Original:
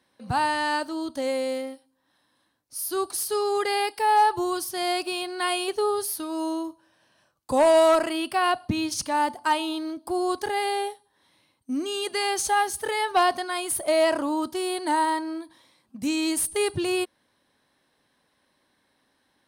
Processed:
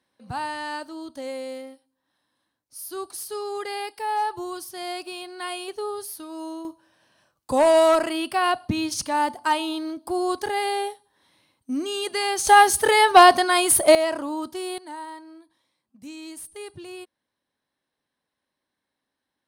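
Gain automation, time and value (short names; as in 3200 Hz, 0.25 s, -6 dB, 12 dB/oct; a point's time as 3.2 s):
-6 dB
from 6.65 s +1 dB
from 12.47 s +9.5 dB
from 13.95 s -3 dB
from 14.78 s -13.5 dB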